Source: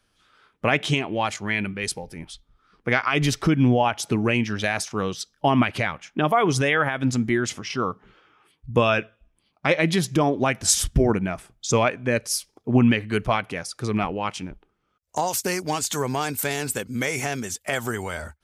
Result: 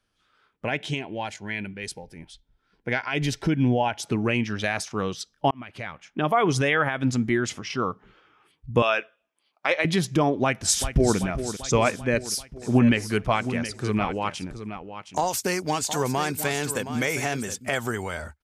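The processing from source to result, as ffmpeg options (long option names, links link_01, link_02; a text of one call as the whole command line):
ffmpeg -i in.wav -filter_complex "[0:a]asettb=1/sr,asplit=3[link_01][link_02][link_03];[link_01]atrim=end=0.654[link_04];[link_02]atrim=start=0.65:end=4.02,asetpts=PTS-STARTPTS,afade=type=in:duration=0.004:curve=qsin,afade=type=out:start_time=3.366:duration=0.004:curve=qsin,asuperstop=centerf=1200:order=4:qfactor=4.1[link_05];[link_03]atrim=start=4.016[link_06];[link_04][link_05]acrossfade=duration=0.004:curve1=hsin:curve2=qsin[link_07];[link_07][link_06]acrossfade=duration=0.004:curve1=qsin:curve2=hsin,asettb=1/sr,asplit=3[link_08][link_09][link_10];[link_08]atrim=end=8.824[link_11];[link_09]atrim=start=8.82:end=9.85,asetpts=PTS-STARTPTS,afade=type=in:duration=0.004:curve=qsin,afade=type=out:start_time=1.026:duration=0.004:curve=qsin,highpass=510[link_12];[link_10]atrim=start=9.846[link_13];[link_11][link_12]acrossfade=duration=0.004:curve1=hsin:curve2=qsin[link_14];[link_14][link_13]acrossfade=duration=0.004:curve1=qsin:curve2=hsin,asplit=2[link_15][link_16];[link_16]afade=type=in:start_time=10.42:duration=0.01,afade=type=out:start_time=11.17:duration=0.01,aecho=0:1:390|780|1170|1560|1950|2340|2730|3120:0.298538|0.19405|0.126132|0.0819861|0.0532909|0.0346391|0.0225154|0.014635[link_17];[link_15][link_17]amix=inputs=2:normalize=0,asettb=1/sr,asplit=3[link_18][link_19][link_20];[link_18]atrim=end=11.904[link_21];[link_19]atrim=start=11.9:end=17.69,asetpts=PTS-STARTPTS,afade=type=in:duration=0.004:curve=qsin,afade=type=out:start_time=5.786:duration=0.004:curve=qsin,aecho=1:1:718:0.282,atrim=end_sample=255339[link_22];[link_20]atrim=start=17.686[link_23];[link_21][link_22]acrossfade=duration=0.004:curve1=hsin:curve2=qsin[link_24];[link_24][link_23]acrossfade=duration=0.004:curve1=qsin:curve2=hsin,asplit=2[link_25][link_26];[link_25]atrim=end=5.51,asetpts=PTS-STARTPTS,afade=type=out:start_time=5.506:duration=0.004:curve=hsin[link_27];[link_26]atrim=start=5.51,asetpts=PTS-STARTPTS,afade=type=in:duration=0.89[link_28];[link_27][link_28]concat=n=2:v=0:a=1,highshelf=frequency=10000:gain=-6.5,dynaudnorm=framelen=420:gausssize=17:maxgain=11.5dB,volume=-6.5dB" out.wav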